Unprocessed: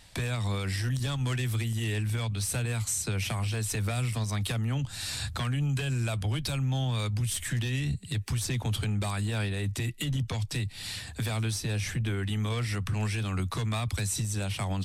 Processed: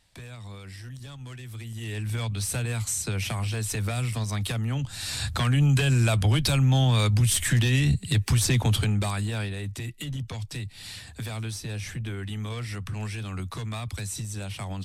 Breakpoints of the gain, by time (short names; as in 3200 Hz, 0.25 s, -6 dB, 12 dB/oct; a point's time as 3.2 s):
1.44 s -11 dB
2.19 s +1.5 dB
5.01 s +1.5 dB
5.6 s +8 dB
8.6 s +8 dB
9.71 s -3 dB